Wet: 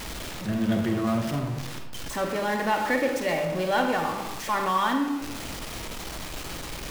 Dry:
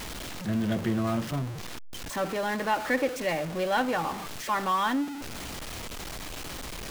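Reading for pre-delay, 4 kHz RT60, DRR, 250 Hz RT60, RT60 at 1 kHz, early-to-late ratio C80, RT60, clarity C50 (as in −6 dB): 33 ms, 0.60 s, 4.0 dB, 1.2 s, 1.0 s, 8.0 dB, 1.0 s, 5.5 dB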